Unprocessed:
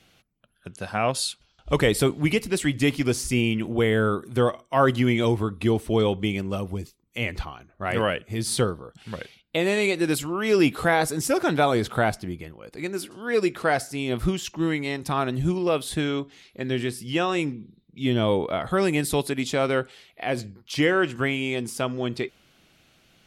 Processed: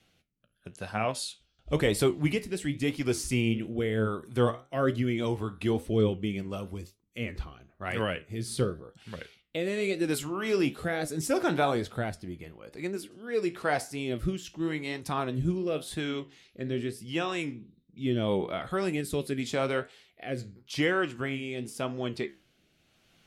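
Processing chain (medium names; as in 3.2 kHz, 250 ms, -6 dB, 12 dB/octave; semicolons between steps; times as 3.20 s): rotary cabinet horn 0.85 Hz; flange 1 Hz, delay 8.8 ms, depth 9 ms, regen +70%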